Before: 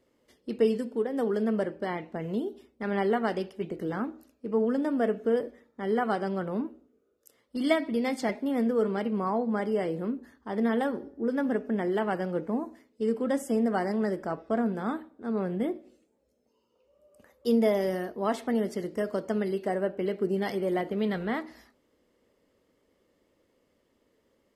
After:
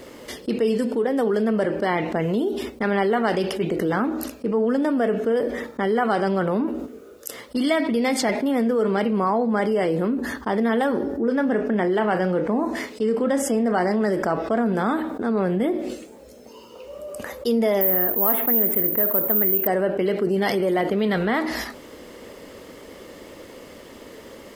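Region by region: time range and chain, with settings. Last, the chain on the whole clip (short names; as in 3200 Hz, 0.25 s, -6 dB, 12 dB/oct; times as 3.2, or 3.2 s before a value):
11.24–14.01 high shelf 9000 Hz -10 dB + doubler 33 ms -13 dB + mismatched tape noise reduction encoder only
17.81–19.67 high shelf 9200 Hz +5.5 dB + careless resampling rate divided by 3×, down filtered, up zero stuff + Butterworth band-stop 5300 Hz, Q 0.72
whole clip: gate -53 dBFS, range -12 dB; low shelf 380 Hz -4.5 dB; fast leveller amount 70%; gain +2 dB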